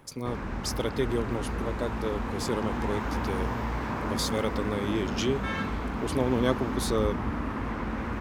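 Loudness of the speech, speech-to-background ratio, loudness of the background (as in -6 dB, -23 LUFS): -32.0 LUFS, 0.5 dB, -32.5 LUFS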